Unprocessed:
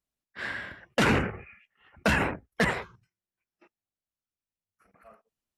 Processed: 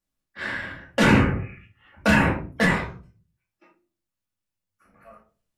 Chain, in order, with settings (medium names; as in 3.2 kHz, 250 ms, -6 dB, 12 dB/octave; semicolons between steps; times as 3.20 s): simulated room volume 220 m³, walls furnished, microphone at 2.4 m